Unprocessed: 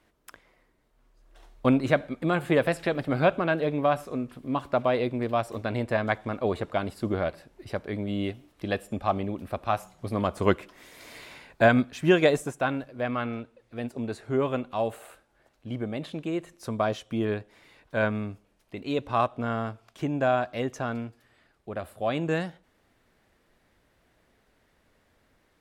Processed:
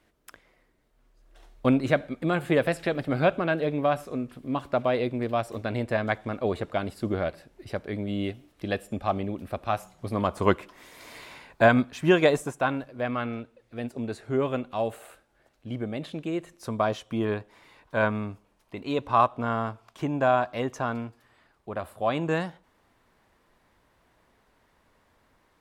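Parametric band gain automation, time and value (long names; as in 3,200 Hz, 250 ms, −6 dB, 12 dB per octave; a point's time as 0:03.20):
parametric band 1,000 Hz 0.59 octaves
0:09.79 −2.5 dB
0:10.37 +4.5 dB
0:12.69 +4.5 dB
0:13.31 −1.5 dB
0:16.30 −1.5 dB
0:17.21 +7.5 dB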